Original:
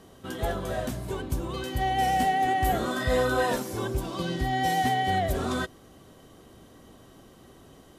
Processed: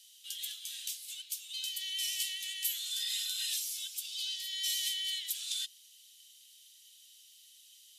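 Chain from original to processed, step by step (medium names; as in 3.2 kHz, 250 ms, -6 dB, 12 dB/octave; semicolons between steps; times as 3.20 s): steep high-pass 2.9 kHz 36 dB/octave; trim +5.5 dB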